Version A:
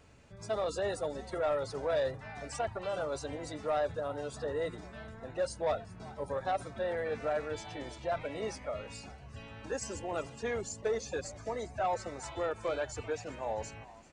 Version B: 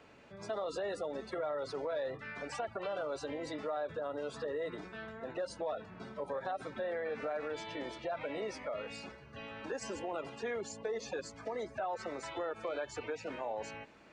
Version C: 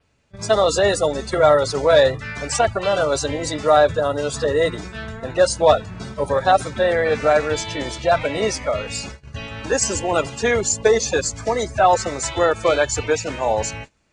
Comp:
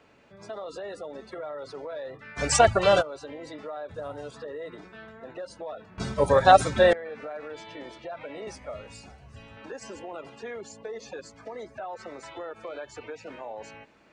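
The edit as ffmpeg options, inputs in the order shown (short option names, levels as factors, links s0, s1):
-filter_complex "[2:a]asplit=2[s0][s1];[0:a]asplit=2[s2][s3];[1:a]asplit=5[s4][s5][s6][s7][s8];[s4]atrim=end=2.4[s9];[s0]atrim=start=2.36:end=3.03[s10];[s5]atrim=start=2.99:end=3.912[s11];[s2]atrim=start=3.908:end=4.312[s12];[s6]atrim=start=4.308:end=5.982[s13];[s1]atrim=start=5.978:end=6.932[s14];[s7]atrim=start=6.928:end=8.472[s15];[s3]atrim=start=8.468:end=9.572[s16];[s8]atrim=start=9.568[s17];[s9][s10]acrossfade=d=0.04:c1=tri:c2=tri[s18];[s18][s11]acrossfade=d=0.04:c1=tri:c2=tri[s19];[s19][s12]acrossfade=d=0.004:c1=hsin:c2=hsin[s20];[s20][s13]acrossfade=d=0.004:c1=hsin:c2=hsin[s21];[s21][s14]acrossfade=d=0.004:c1=hsin:c2=hsin[s22];[s22][s15]acrossfade=d=0.004:c1=hsin:c2=hsin[s23];[s23][s16]acrossfade=d=0.004:c1=hsin:c2=hsin[s24];[s24][s17]acrossfade=d=0.004:c1=hsin:c2=hsin"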